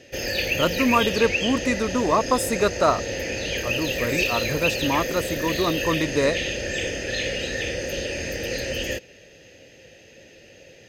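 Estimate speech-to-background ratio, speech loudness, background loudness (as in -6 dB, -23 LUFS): 2.0 dB, -24.0 LUFS, -26.0 LUFS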